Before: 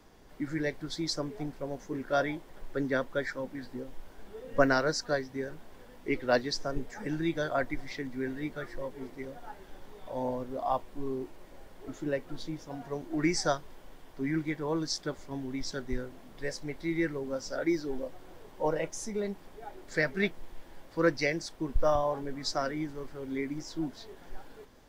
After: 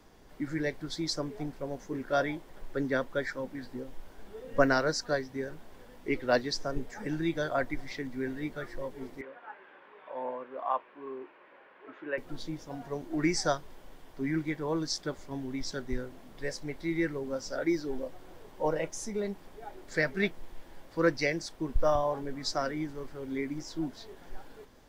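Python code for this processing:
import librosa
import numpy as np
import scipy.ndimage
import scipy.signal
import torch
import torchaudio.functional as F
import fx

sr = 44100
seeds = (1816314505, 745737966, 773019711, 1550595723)

y = fx.cabinet(x, sr, low_hz=470.0, low_slope=12, high_hz=2800.0, hz=(720.0, 1100.0, 1600.0, 2500.0), db=(-5, 5, 6, 5), at=(9.21, 12.18))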